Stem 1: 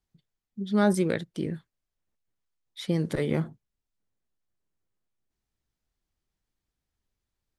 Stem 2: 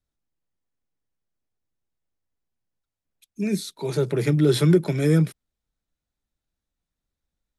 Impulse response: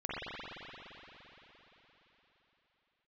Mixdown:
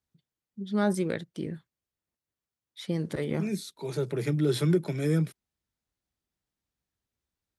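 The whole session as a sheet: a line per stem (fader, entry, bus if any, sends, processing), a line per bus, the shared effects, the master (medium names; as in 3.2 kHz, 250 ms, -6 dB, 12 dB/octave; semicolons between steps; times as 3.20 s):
-3.5 dB, 0.00 s, no send, none
-7.0 dB, 0.00 s, no send, none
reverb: none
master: high-pass 61 Hz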